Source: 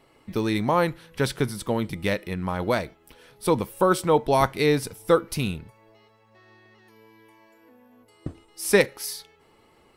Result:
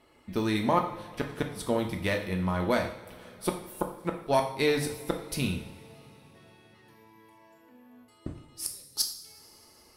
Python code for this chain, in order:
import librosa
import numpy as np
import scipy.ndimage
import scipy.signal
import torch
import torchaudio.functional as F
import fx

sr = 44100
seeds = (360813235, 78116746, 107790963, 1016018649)

y = fx.high_shelf_res(x, sr, hz=3100.0, db=13.5, q=3.0, at=(8.66, 9.12))
y = fx.cheby_harmonics(y, sr, harmonics=(2, 4, 5), levels_db=(-14, -17, -39), full_scale_db=2.0)
y = fx.gate_flip(y, sr, shuts_db=-8.0, range_db=-42)
y = fx.rev_double_slope(y, sr, seeds[0], early_s=0.58, late_s=4.2, knee_db=-21, drr_db=2.5)
y = y * librosa.db_to_amplitude(-4.5)